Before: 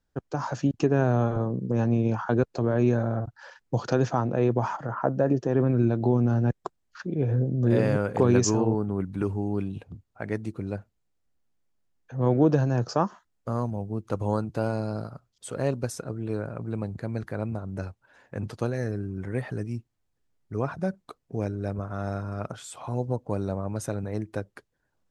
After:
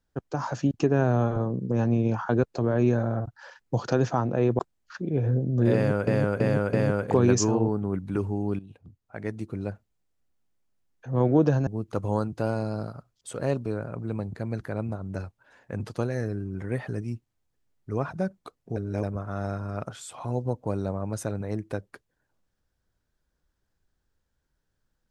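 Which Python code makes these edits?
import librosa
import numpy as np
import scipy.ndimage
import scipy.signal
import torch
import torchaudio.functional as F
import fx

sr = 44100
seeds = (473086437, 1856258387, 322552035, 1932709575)

y = fx.edit(x, sr, fx.cut(start_s=4.59, length_s=2.05),
    fx.repeat(start_s=7.79, length_s=0.33, count=4),
    fx.fade_in_from(start_s=9.65, length_s=0.98, floor_db=-14.0),
    fx.cut(start_s=12.73, length_s=1.11),
    fx.cut(start_s=15.83, length_s=0.46),
    fx.reverse_span(start_s=21.39, length_s=0.27), tone=tone)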